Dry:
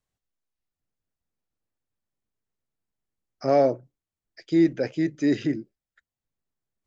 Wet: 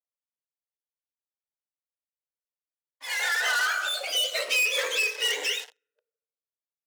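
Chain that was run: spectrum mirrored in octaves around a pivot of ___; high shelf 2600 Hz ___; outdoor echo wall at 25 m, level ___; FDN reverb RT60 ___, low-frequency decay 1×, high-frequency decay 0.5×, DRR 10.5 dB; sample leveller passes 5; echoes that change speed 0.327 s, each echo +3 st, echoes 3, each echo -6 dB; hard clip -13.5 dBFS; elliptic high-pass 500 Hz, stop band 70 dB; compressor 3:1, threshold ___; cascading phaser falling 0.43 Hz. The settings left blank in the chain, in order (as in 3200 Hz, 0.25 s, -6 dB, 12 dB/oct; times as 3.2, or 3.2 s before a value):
910 Hz, -8 dB, -28 dB, 1.1 s, -22 dBFS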